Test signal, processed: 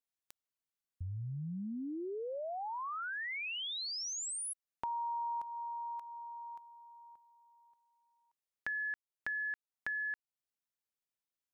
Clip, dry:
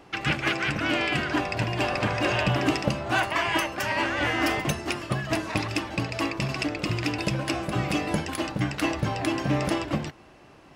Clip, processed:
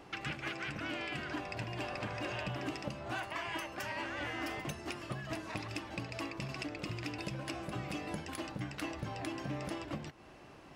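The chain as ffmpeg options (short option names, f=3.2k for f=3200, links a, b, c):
-af "acompressor=threshold=-39dB:ratio=2.5,volume=-3dB"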